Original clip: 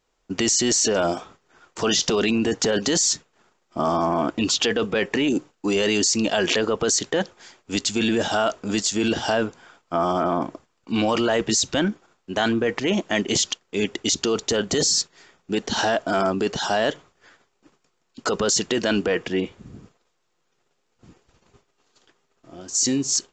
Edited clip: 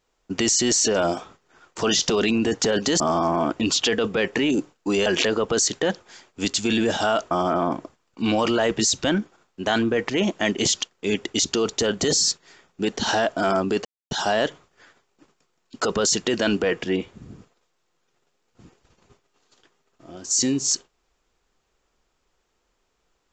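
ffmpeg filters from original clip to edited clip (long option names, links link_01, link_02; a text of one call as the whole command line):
ffmpeg -i in.wav -filter_complex "[0:a]asplit=5[link_01][link_02][link_03][link_04][link_05];[link_01]atrim=end=3.002[link_06];[link_02]atrim=start=3.778:end=5.842[link_07];[link_03]atrim=start=6.368:end=8.622[link_08];[link_04]atrim=start=10.008:end=16.55,asetpts=PTS-STARTPTS,afade=type=out:start_time=6.538:duration=0.004:curve=hsin,apad=pad_dur=0.26[link_09];[link_05]atrim=start=16.55,asetpts=PTS-STARTPTS,afade=type=in:duration=0.004:curve=hsin[link_10];[link_06][link_07]acrossfade=duration=0.004:curve1=hsin:curve2=hsin[link_11];[link_11][link_08]acrossfade=duration=0.004:curve1=hsin:curve2=hsin[link_12];[link_09][link_10]concat=n=2:v=0:a=1[link_13];[link_12][link_13]acrossfade=duration=0.004:curve1=hsin:curve2=hsin" out.wav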